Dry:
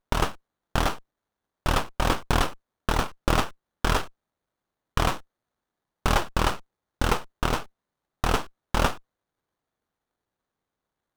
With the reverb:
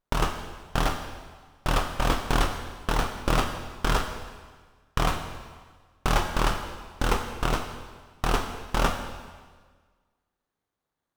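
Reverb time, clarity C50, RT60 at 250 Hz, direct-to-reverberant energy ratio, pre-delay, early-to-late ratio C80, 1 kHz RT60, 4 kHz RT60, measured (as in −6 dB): 1.5 s, 7.0 dB, 1.6 s, 5.0 dB, 6 ms, 8.5 dB, 1.5 s, 1.4 s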